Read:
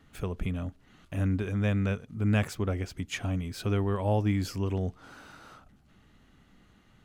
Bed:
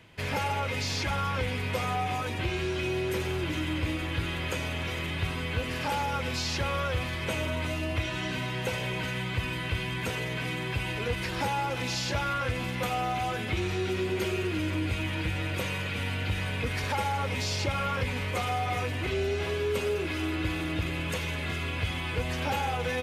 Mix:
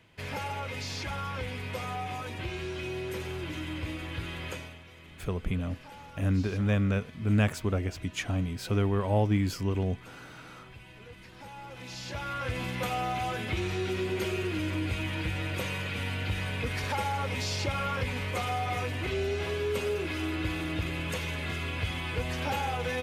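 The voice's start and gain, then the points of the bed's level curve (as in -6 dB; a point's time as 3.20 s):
5.05 s, +1.0 dB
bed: 4.52 s -5.5 dB
4.84 s -18.5 dB
11.36 s -18.5 dB
12.59 s -1.5 dB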